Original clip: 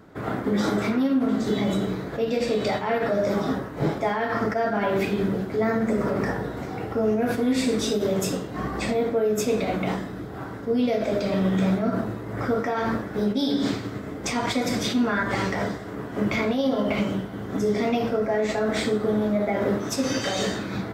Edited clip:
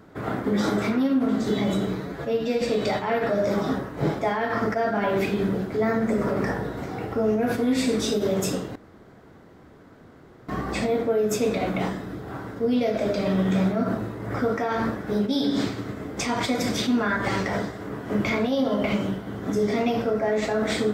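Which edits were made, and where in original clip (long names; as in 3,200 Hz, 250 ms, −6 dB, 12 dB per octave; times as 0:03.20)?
0:02.00–0:02.41: time-stretch 1.5×
0:08.55: splice in room tone 1.73 s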